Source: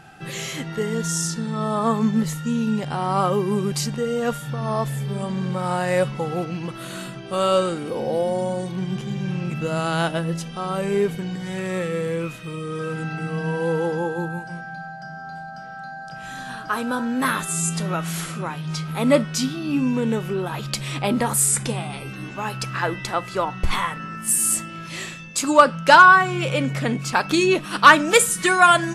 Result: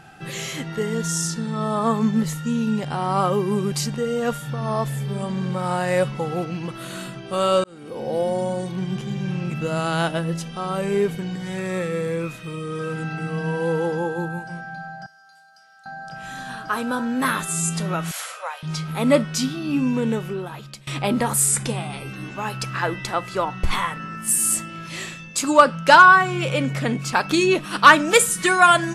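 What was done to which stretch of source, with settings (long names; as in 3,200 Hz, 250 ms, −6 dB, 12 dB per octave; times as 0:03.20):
0:07.64–0:08.22: fade in
0:11.56–0:12.38: notch filter 3,000 Hz, Q 13
0:15.06–0:15.86: first difference
0:18.11–0:18.63: Butterworth high-pass 480 Hz 96 dB per octave
0:20.08–0:20.87: fade out, to −22.5 dB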